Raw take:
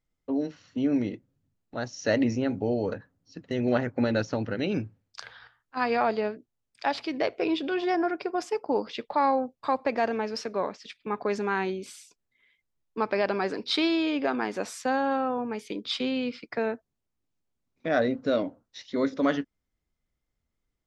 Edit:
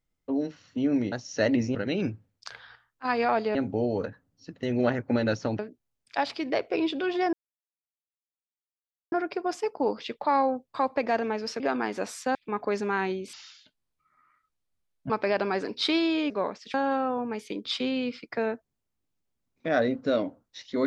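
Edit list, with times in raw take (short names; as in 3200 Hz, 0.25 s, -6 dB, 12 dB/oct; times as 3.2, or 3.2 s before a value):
1.12–1.8 cut
4.47–6.27 move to 2.43
8.01 insert silence 1.79 s
10.49–10.93 swap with 14.19–14.94
11.91–12.99 speed 61%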